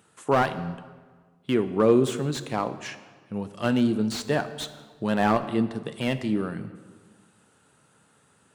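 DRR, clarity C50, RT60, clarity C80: 11.0 dB, 13.0 dB, 1.5 s, 14.0 dB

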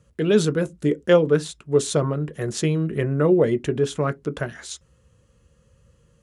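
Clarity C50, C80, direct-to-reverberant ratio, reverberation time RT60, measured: 32.5 dB, 40.5 dB, 10.5 dB, no single decay rate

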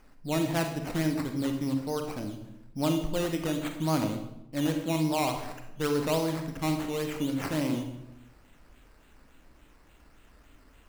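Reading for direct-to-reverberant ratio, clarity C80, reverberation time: 4.5 dB, 9.5 dB, 0.85 s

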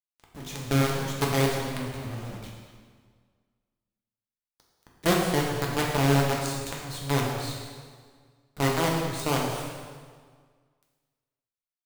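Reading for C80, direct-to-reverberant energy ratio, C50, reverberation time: 3.0 dB, -2.5 dB, 1.5 dB, 1.7 s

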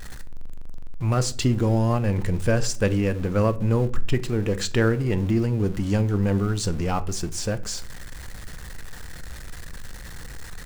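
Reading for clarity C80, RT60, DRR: 23.0 dB, 0.50 s, 12.0 dB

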